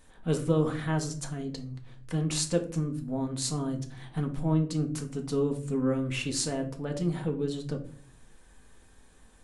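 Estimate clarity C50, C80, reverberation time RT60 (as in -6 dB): 12.0 dB, 17.0 dB, 0.50 s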